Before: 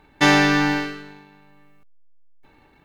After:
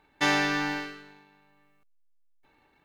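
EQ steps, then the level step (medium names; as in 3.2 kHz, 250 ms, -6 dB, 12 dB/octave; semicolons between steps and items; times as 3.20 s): bass shelf 320 Hz -7.5 dB; -7.5 dB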